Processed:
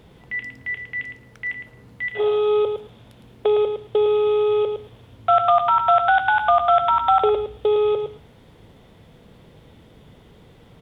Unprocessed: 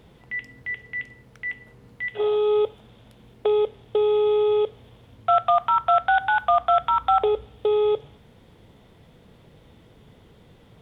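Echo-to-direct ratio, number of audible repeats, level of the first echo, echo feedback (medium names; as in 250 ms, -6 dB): -7.5 dB, 2, -7.5 dB, 15%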